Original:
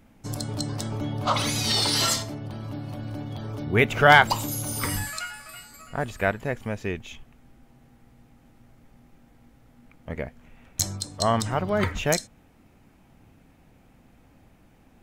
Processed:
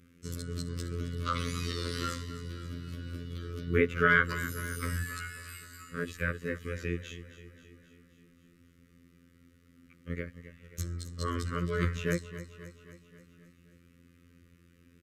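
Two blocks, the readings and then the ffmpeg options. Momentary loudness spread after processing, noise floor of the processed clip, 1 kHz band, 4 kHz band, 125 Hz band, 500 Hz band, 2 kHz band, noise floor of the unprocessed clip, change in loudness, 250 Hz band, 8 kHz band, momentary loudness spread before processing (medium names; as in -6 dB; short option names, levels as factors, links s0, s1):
17 LU, -62 dBFS, -13.0 dB, -15.0 dB, -5.0 dB, -8.0 dB, -6.5 dB, -57 dBFS, -8.5 dB, -6.0 dB, -15.5 dB, 16 LU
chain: -filter_complex "[0:a]highpass=49,acrossover=split=1800[s0][s1];[s1]acompressor=threshold=0.01:ratio=6[s2];[s0][s2]amix=inputs=2:normalize=0,afftfilt=real='hypot(re,im)*cos(PI*b)':imag='0':win_size=2048:overlap=0.75,asplit=2[s3][s4];[s4]aecho=0:1:266|532|798|1064|1330|1596:0.211|0.125|0.0736|0.0434|0.0256|0.0151[s5];[s3][s5]amix=inputs=2:normalize=0,aresample=32000,aresample=44100,asuperstop=centerf=780:order=8:qfactor=1.2"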